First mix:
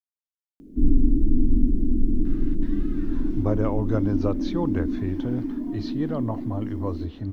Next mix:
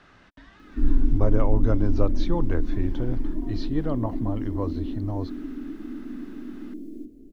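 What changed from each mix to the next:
speech: entry -2.25 s; background: add bell 160 Hz -8 dB 2.2 oct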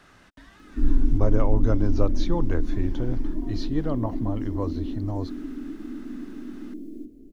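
speech: remove LPF 4700 Hz 12 dB/oct

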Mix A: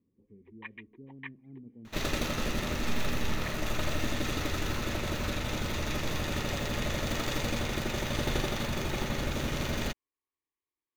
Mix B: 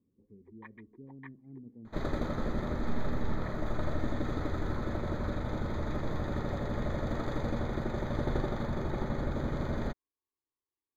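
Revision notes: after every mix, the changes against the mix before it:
master: add running mean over 16 samples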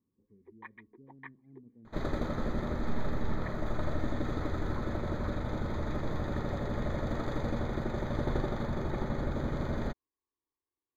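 speech -6.5 dB; first sound +3.5 dB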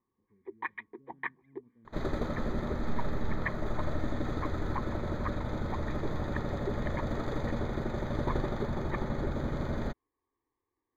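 speech -6.0 dB; first sound +12.0 dB

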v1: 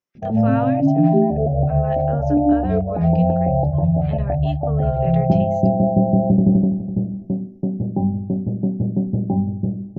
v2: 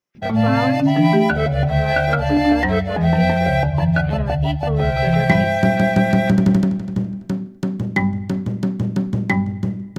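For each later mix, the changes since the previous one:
speech +5.0 dB; background: remove steep low-pass 790 Hz 72 dB/oct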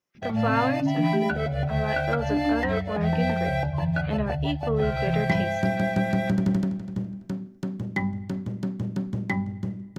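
background -8.5 dB

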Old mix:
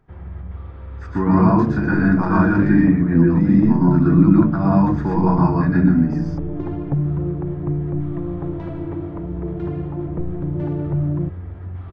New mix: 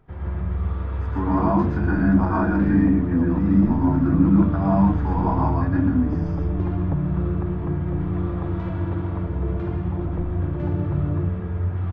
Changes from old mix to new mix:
speech: add rippled Chebyshev high-pass 190 Hz, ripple 9 dB; first sound: send on; second sound: add low shelf 390 Hz -6.5 dB

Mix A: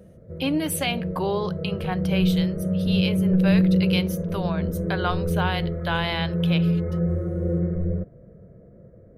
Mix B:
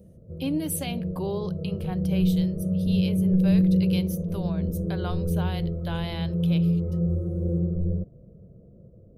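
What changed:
background: add Butterworth band-stop 1800 Hz, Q 1.8; master: add bell 1600 Hz -13.5 dB 2.9 oct

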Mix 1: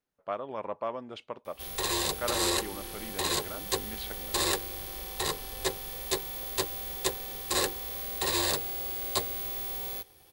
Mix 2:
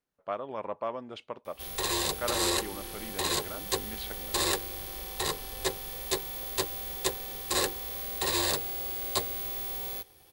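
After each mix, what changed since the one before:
none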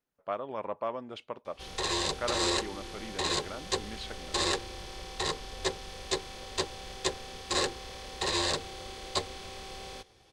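background: add LPF 7400 Hz 24 dB/oct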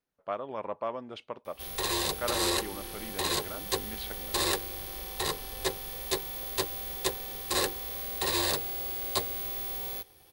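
background: remove LPF 7400 Hz 24 dB/oct; master: add bell 7400 Hz -4.5 dB 0.23 oct

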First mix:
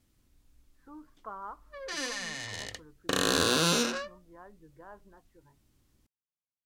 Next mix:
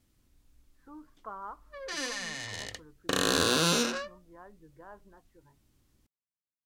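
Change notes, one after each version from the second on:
none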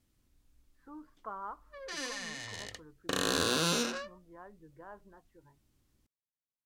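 background -4.0 dB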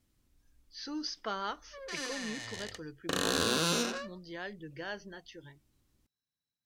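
speech: remove ladder low-pass 1200 Hz, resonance 65%

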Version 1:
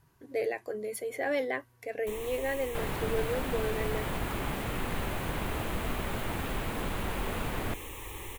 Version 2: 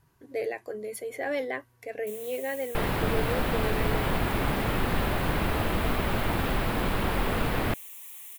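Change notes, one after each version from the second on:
first sound: add differentiator; second sound +7.0 dB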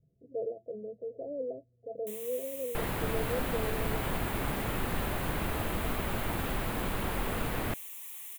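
speech: add rippled Chebyshev low-pass 690 Hz, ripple 9 dB; second sound -6.0 dB

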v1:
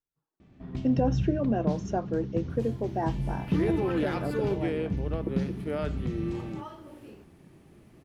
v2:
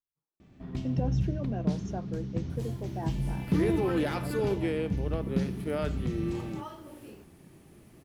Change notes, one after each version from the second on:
speech -9.0 dB; master: add high shelf 6400 Hz +10 dB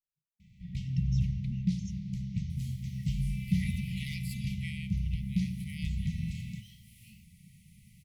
master: add brick-wall FIR band-stop 220–1900 Hz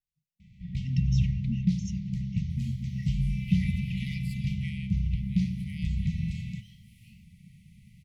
speech +11.5 dB; first sound +4.0 dB; master: add high shelf 6400 Hz -10 dB

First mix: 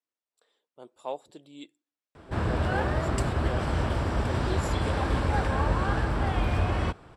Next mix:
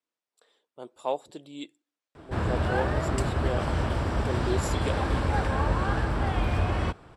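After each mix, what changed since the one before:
speech +5.5 dB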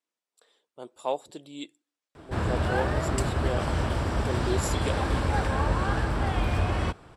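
master: add high shelf 5100 Hz +5.5 dB

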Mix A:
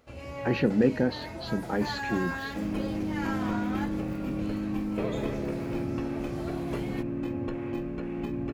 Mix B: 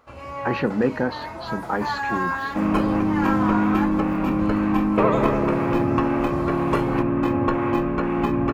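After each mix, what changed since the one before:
second sound +9.5 dB; master: add bell 1100 Hz +14 dB 1.1 oct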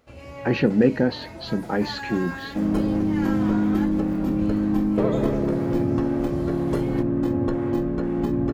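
speech +5.0 dB; second sound: add bell 2500 Hz -14.5 dB 0.54 oct; master: add bell 1100 Hz -14 dB 1.1 oct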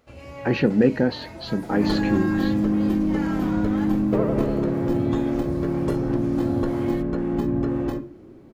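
second sound: entry -0.85 s

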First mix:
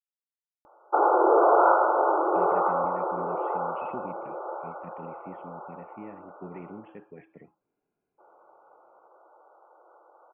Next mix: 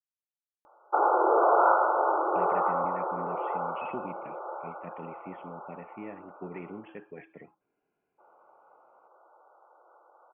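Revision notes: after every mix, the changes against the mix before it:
speech +7.0 dB; master: add low shelf 460 Hz -9 dB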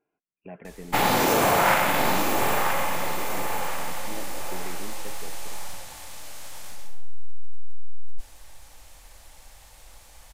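speech: entry -1.90 s; background: remove brick-wall FIR band-pass 320–1500 Hz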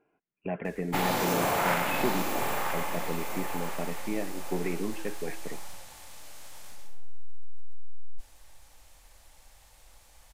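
speech +8.5 dB; background -7.0 dB

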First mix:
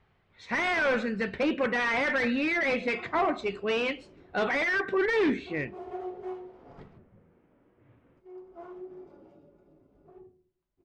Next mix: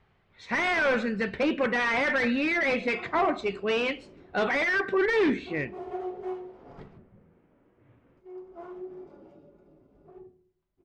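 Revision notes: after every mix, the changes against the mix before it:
reverb: on, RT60 0.75 s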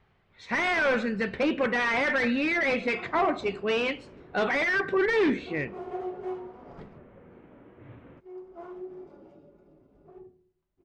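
first sound +12.0 dB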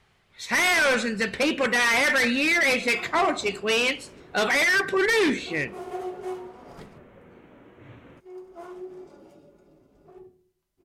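master: remove tape spacing loss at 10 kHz 28 dB

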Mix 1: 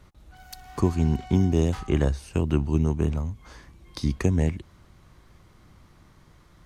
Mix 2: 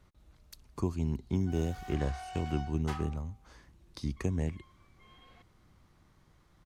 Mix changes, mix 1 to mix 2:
speech -9.5 dB; background: entry +1.15 s

